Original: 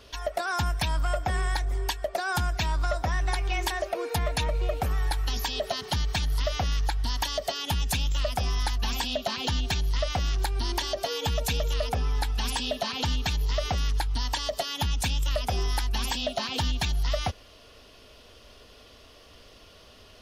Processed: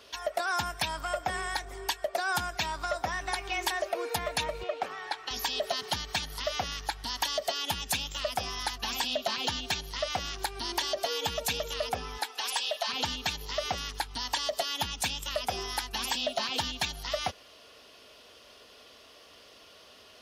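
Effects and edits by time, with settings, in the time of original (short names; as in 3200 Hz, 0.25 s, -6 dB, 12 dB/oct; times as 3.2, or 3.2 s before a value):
4.63–5.31 BPF 320–4600 Hz
12.17–12.87 HPF 290 Hz -> 650 Hz 24 dB/oct
whole clip: HPF 410 Hz 6 dB/oct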